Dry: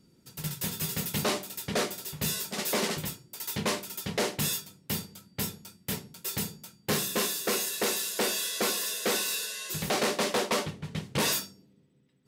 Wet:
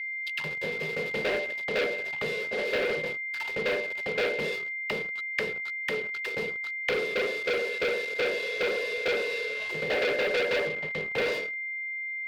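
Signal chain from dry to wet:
envelope filter 500–4,300 Hz, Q 7, down, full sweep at −32.5 dBFS
on a send at −11.5 dB: convolution reverb RT60 0.50 s, pre-delay 4 ms
on the sum: leveller curve on the samples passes 5
steady tone 2,100 Hz −42 dBFS
flat-topped bell 3,000 Hz +10.5 dB

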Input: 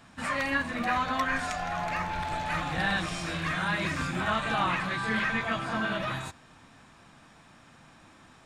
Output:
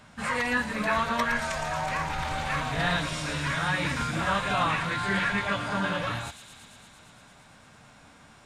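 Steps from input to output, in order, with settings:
phase-vocoder pitch shift with formants kept −2 semitones
on a send: delay with a high-pass on its return 114 ms, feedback 81%, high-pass 4,800 Hz, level −5 dB
on the sum: level +2 dB

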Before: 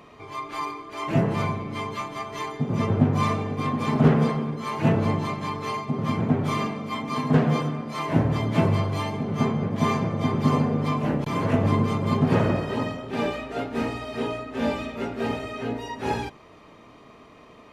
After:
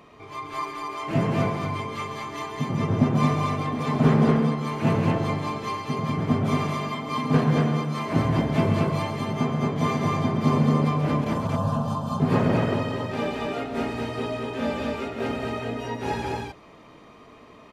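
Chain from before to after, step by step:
0:11.33–0:12.20: phaser with its sweep stopped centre 880 Hz, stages 4
on a send: loudspeakers that aren't time-aligned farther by 46 metres −8 dB, 78 metres −2 dB
on the sum: level −2 dB

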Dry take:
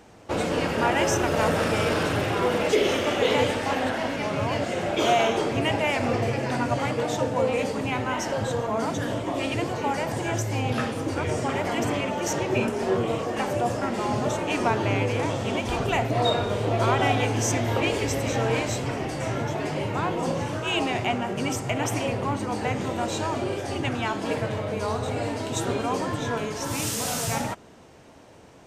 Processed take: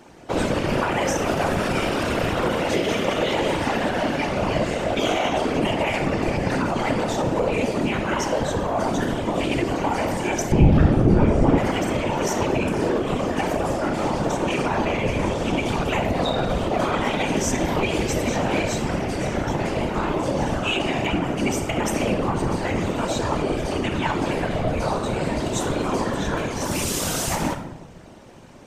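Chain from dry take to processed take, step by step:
rectangular room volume 3,100 cubic metres, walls furnished, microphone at 2.5 metres
brickwall limiter −15 dBFS, peak gain reduction 6.5 dB
0:10.52–0:11.58: spectral tilt −3.5 dB per octave
random phases in short frames
level +1.5 dB

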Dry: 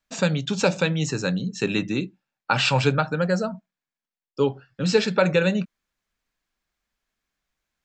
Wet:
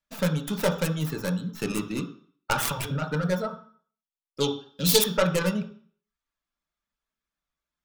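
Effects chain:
stylus tracing distortion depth 0.47 ms
0:04.40–0:05.04: high shelf with overshoot 2,700 Hz +13.5 dB, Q 1.5
in parallel at −9 dB: centre clipping without the shift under −33 dBFS
0:02.65–0:03.28: on the sum: compressor whose output falls as the input rises −20 dBFS, ratio −0.5
reverb reduction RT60 0.56 s
on a send at −2 dB: convolution reverb RT60 0.50 s, pre-delay 3 ms
on the sum: level −8 dB

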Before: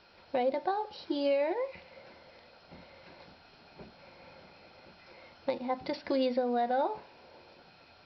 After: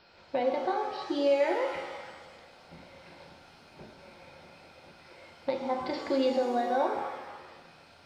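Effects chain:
0:01.40–0:02.10: parametric band 1,700 Hz +7.5 dB 0.96 octaves
reverb with rising layers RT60 1.3 s, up +7 semitones, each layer −8 dB, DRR 2.5 dB

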